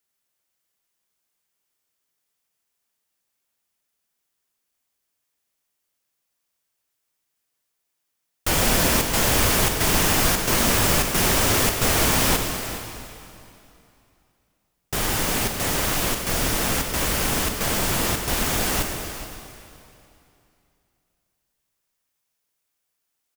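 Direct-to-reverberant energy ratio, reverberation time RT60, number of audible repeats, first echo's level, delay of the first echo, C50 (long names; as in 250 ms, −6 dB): 3.5 dB, 2.7 s, 1, −14.5 dB, 419 ms, 4.0 dB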